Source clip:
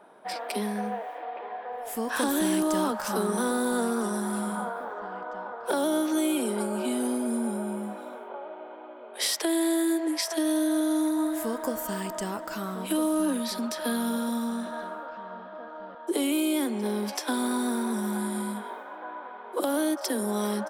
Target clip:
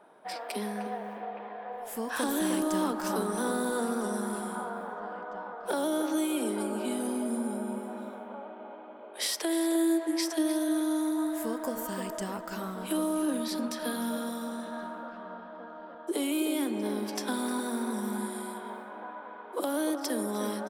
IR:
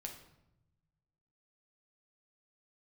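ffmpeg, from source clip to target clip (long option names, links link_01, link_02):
-filter_complex "[0:a]asplit=2[link_01][link_02];[link_02]adelay=306,lowpass=frequency=1500:poles=1,volume=-6.5dB,asplit=2[link_03][link_04];[link_04]adelay=306,lowpass=frequency=1500:poles=1,volume=0.47,asplit=2[link_05][link_06];[link_06]adelay=306,lowpass=frequency=1500:poles=1,volume=0.47,asplit=2[link_07][link_08];[link_08]adelay=306,lowpass=frequency=1500:poles=1,volume=0.47,asplit=2[link_09][link_10];[link_10]adelay=306,lowpass=frequency=1500:poles=1,volume=0.47,asplit=2[link_11][link_12];[link_12]adelay=306,lowpass=frequency=1500:poles=1,volume=0.47[link_13];[link_01][link_03][link_05][link_07][link_09][link_11][link_13]amix=inputs=7:normalize=0,asplit=2[link_14][link_15];[1:a]atrim=start_sample=2205[link_16];[link_15][link_16]afir=irnorm=-1:irlink=0,volume=-11dB[link_17];[link_14][link_17]amix=inputs=2:normalize=0,volume=-5dB"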